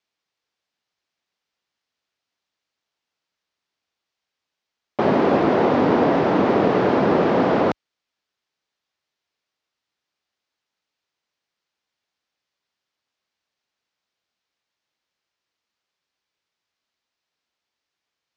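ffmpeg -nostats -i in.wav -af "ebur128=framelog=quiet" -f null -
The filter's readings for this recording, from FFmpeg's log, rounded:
Integrated loudness:
  I:         -18.5 LUFS
  Threshold: -28.7 LUFS
Loudness range:
  LRA:         9.7 LU
  Threshold: -41.3 LUFS
  LRA low:   -28.2 LUFS
  LRA high:  -18.5 LUFS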